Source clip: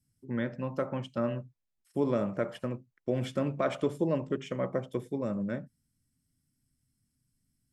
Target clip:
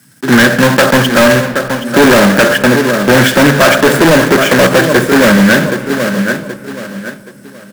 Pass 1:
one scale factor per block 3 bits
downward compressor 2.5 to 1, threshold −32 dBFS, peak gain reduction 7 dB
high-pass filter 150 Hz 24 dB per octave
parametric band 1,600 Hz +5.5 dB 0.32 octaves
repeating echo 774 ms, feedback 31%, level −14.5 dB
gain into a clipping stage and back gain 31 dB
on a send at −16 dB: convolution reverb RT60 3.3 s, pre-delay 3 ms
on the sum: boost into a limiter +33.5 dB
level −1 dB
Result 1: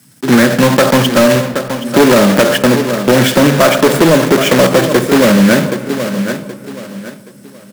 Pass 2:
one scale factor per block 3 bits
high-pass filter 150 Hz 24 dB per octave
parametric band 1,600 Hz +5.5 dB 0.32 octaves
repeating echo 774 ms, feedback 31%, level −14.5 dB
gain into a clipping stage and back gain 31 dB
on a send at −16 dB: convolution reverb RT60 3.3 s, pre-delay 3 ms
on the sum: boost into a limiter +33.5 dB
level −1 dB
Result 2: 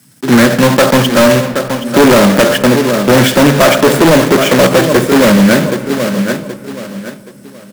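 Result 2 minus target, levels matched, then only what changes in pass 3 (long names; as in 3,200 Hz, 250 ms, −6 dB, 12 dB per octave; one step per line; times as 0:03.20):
2,000 Hz band −4.5 dB
change: parametric band 1,600 Hz +15 dB 0.32 octaves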